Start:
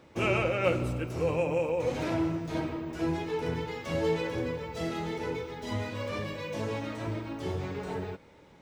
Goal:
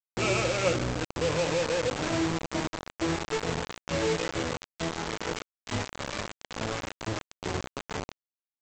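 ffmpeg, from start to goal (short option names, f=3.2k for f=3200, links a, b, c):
-af "afftdn=nr=22:nf=-39,aresample=16000,acrusher=bits=4:mix=0:aa=0.000001,aresample=44100"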